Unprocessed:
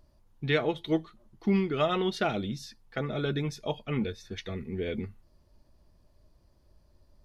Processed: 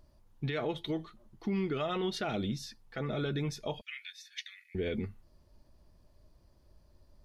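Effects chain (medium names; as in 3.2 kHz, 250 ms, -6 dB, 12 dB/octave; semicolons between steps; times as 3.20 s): 3.81–4.75 s: steep high-pass 1.7 kHz 48 dB/octave; peak limiter -25 dBFS, peak gain reduction 11.5 dB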